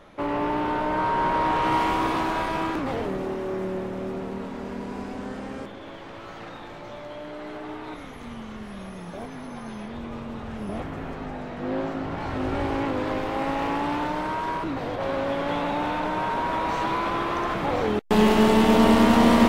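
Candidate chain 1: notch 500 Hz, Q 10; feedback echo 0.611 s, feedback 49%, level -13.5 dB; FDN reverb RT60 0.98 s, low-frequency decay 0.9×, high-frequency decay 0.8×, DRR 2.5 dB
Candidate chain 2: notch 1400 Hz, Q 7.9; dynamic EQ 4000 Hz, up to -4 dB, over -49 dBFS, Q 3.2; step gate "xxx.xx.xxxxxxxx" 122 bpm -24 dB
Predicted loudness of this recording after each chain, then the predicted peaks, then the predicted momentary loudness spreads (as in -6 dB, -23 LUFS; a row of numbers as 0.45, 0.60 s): -22.5, -26.0 LUFS; -1.5, -7.5 dBFS; 19, 19 LU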